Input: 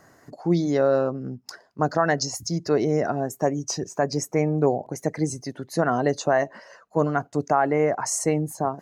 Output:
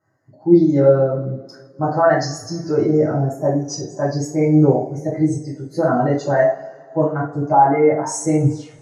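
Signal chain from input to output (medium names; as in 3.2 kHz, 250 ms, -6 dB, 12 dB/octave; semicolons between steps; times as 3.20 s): tape stop on the ending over 0.42 s; two-slope reverb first 0.52 s, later 3.1 s, from -17 dB, DRR -8 dB; spectral contrast expander 1.5:1; trim -1 dB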